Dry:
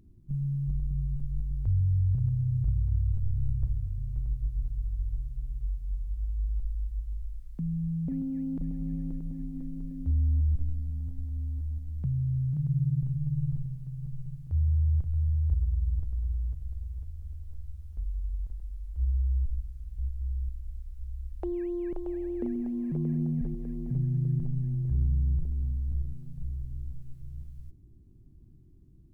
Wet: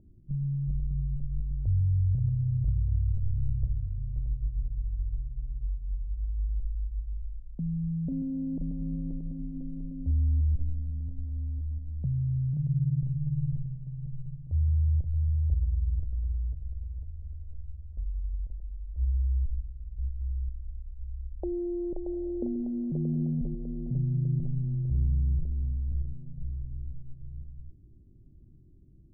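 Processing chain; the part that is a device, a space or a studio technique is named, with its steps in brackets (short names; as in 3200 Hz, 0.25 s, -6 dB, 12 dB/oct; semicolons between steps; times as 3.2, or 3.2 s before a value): under water (LPF 700 Hz 24 dB/oct; bell 570 Hz +5 dB 0.35 oct)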